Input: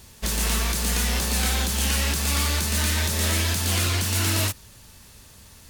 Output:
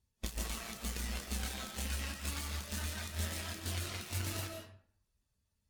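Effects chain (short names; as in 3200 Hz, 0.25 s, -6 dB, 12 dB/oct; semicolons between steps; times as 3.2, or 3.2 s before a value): reverb removal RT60 0.61 s; added harmonics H 3 -9 dB, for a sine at -14.5 dBFS; compressor 2:1, threshold -48 dBFS, peak gain reduction 12 dB; on a send at -2.5 dB: reverb RT60 0.85 s, pre-delay 0.105 s; on the sum: spectral expander 1.5:1; gain +2 dB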